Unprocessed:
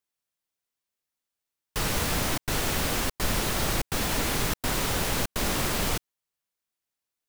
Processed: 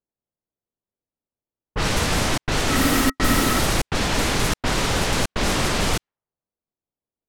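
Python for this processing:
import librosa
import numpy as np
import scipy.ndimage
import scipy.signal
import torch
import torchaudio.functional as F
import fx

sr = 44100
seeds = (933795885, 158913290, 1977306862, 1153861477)

y = fx.small_body(x, sr, hz=(270.0, 1300.0, 1900.0), ring_ms=70, db=13, at=(2.7, 3.6))
y = fx.env_lowpass(y, sr, base_hz=560.0, full_db=-21.0)
y = y * librosa.db_to_amplitude(6.5)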